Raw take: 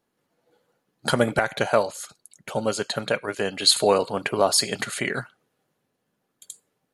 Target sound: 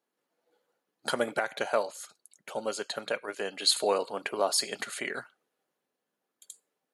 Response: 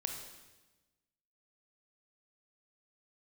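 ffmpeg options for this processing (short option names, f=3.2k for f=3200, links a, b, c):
-af "highpass=300,volume=-7dB"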